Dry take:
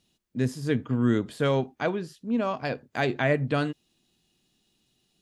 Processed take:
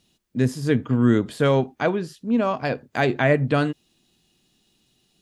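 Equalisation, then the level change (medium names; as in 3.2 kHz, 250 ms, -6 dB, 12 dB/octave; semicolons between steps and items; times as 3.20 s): dynamic bell 4.5 kHz, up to -3 dB, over -42 dBFS, Q 0.72; +5.5 dB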